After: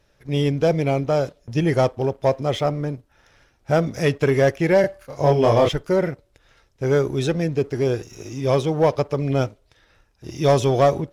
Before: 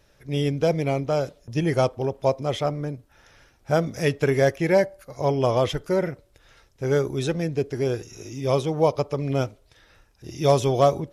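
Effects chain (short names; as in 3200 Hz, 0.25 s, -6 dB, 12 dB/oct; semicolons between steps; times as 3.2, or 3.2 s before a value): high shelf 8300 Hz -6.5 dB; sample leveller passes 1; 4.81–5.69 doubler 27 ms -2 dB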